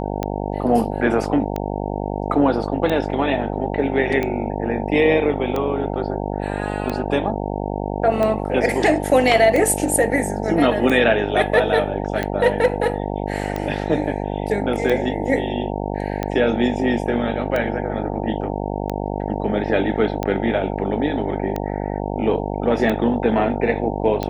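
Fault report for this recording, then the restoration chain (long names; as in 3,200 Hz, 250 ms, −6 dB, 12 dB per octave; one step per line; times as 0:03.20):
mains buzz 50 Hz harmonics 18 −25 dBFS
scratch tick 45 rpm −11 dBFS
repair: click removal
hum removal 50 Hz, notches 18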